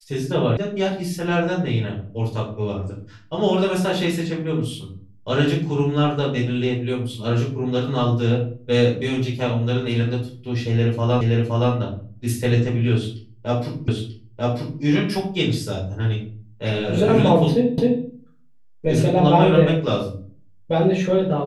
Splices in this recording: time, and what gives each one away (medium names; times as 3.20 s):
0.57 s: sound stops dead
11.21 s: repeat of the last 0.52 s
13.88 s: repeat of the last 0.94 s
17.78 s: repeat of the last 0.26 s